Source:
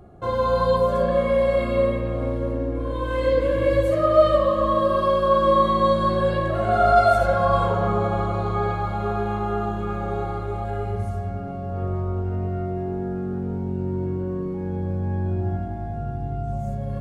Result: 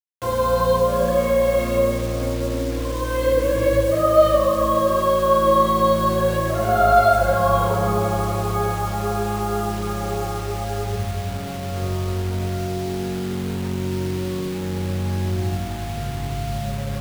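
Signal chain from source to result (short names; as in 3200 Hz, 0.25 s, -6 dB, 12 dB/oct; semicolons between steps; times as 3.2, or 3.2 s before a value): requantised 6-bit, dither none; gain +1.5 dB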